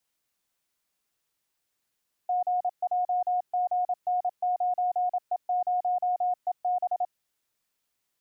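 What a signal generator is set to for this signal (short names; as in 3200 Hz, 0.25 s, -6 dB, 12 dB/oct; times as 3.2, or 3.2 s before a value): Morse "GJGN9E0EB" 27 wpm 723 Hz -23 dBFS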